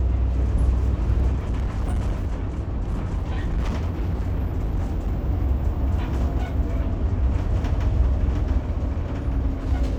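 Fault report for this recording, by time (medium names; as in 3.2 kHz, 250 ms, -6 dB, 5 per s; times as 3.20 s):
1.31–5.20 s: clipped -19.5 dBFS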